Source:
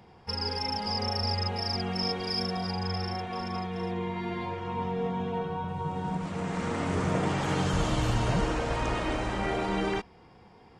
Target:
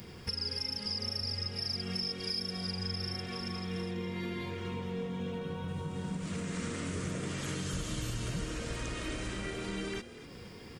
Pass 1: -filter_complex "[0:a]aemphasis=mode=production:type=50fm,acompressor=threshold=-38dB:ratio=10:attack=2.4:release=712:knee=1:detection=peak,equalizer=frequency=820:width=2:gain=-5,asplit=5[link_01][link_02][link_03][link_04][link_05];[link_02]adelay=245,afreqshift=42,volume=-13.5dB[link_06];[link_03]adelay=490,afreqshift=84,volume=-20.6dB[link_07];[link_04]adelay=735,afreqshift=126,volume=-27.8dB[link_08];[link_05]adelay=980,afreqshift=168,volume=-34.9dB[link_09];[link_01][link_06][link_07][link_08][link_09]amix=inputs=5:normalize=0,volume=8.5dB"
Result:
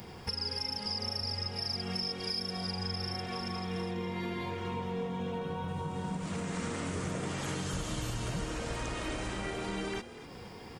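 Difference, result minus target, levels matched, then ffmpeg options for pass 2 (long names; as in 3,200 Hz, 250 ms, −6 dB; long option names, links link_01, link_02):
1,000 Hz band +5.5 dB
-filter_complex "[0:a]aemphasis=mode=production:type=50fm,acompressor=threshold=-38dB:ratio=10:attack=2.4:release=712:knee=1:detection=peak,equalizer=frequency=820:width=2:gain=-15.5,asplit=5[link_01][link_02][link_03][link_04][link_05];[link_02]adelay=245,afreqshift=42,volume=-13.5dB[link_06];[link_03]adelay=490,afreqshift=84,volume=-20.6dB[link_07];[link_04]adelay=735,afreqshift=126,volume=-27.8dB[link_08];[link_05]adelay=980,afreqshift=168,volume=-34.9dB[link_09];[link_01][link_06][link_07][link_08][link_09]amix=inputs=5:normalize=0,volume=8.5dB"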